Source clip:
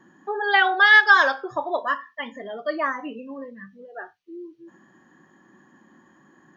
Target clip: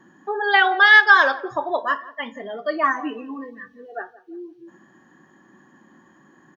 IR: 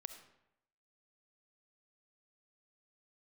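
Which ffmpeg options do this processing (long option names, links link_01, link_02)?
-filter_complex "[0:a]asettb=1/sr,asplit=3[link_01][link_02][link_03];[link_01]atrim=end=1.054[link_04];[link_02]atrim=start=1.05:end=1.5,asetpts=PTS-STARTPTS,afade=type=in:duration=0.004:curve=qsin,afade=type=out:start_time=0.446:duration=0.004:curve=qsin,lowpass=5000[link_05];[link_03]atrim=start=1.496[link_06];[link_04][link_05]acrossfade=duration=0.004:curve1=hsin:curve2=qsin[link_07];[link_07][link_06]acrossfade=duration=0.004:curve1=qsin:curve2=hsin,asettb=1/sr,asplit=3[link_08][link_09][link_10];[link_08]atrim=end=2.834[link_11];[link_09]atrim=start=2.83:end=4.02,asetpts=PTS-STARTPTS,afade=type=in:duration=0.004:curve=qsin,afade=type=out:start_time=1.186:duration=0.004:curve=qsin,aecho=1:1:2.7:0.98,atrim=end_sample=52479[link_12];[link_10]atrim=start=4.016[link_13];[link_11][link_12]acrossfade=duration=0.004:curve1=hsin:curve2=qsin[link_14];[link_14][link_13]acrossfade=duration=0.004:curve1=qsin:curve2=hsin,asplit=2[link_15][link_16];[link_16]adelay=173,lowpass=frequency=1300:poles=1,volume=-17.5dB,asplit=2[link_17][link_18];[link_18]adelay=173,lowpass=frequency=1300:poles=1,volume=0.32,asplit=2[link_19][link_20];[link_20]adelay=173,lowpass=frequency=1300:poles=1,volume=0.32[link_21];[link_15][link_17][link_19][link_21]amix=inputs=4:normalize=0,volume=2dB"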